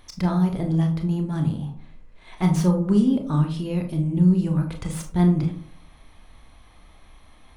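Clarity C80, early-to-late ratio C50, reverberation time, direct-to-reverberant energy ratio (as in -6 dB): 13.5 dB, 9.5 dB, 0.55 s, 3.5 dB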